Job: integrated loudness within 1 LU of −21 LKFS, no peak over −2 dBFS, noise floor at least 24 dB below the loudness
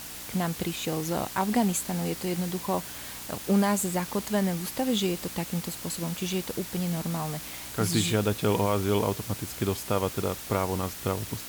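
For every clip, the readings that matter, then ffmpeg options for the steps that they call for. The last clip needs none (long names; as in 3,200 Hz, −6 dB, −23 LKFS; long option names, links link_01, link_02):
mains hum 60 Hz; hum harmonics up to 300 Hz; level of the hum −53 dBFS; background noise floor −40 dBFS; target noise floor −53 dBFS; integrated loudness −28.5 LKFS; sample peak −12.0 dBFS; target loudness −21.0 LKFS
→ -af "bandreject=frequency=60:width_type=h:width=4,bandreject=frequency=120:width_type=h:width=4,bandreject=frequency=180:width_type=h:width=4,bandreject=frequency=240:width_type=h:width=4,bandreject=frequency=300:width_type=h:width=4"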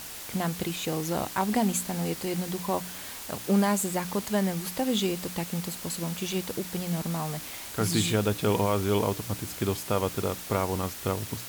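mains hum none found; background noise floor −40 dBFS; target noise floor −53 dBFS
→ -af "afftdn=noise_reduction=13:noise_floor=-40"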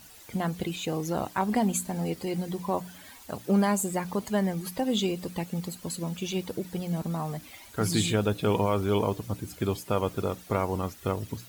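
background noise floor −50 dBFS; target noise floor −54 dBFS
→ -af "afftdn=noise_reduction=6:noise_floor=-50"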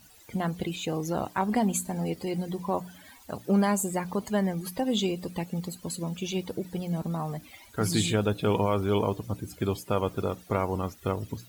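background noise floor −54 dBFS; integrated loudness −29.5 LKFS; sample peak −13.0 dBFS; target loudness −21.0 LKFS
→ -af "volume=8.5dB"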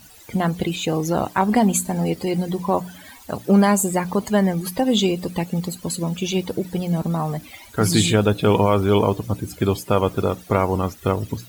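integrated loudness −21.0 LKFS; sample peak −4.5 dBFS; background noise floor −45 dBFS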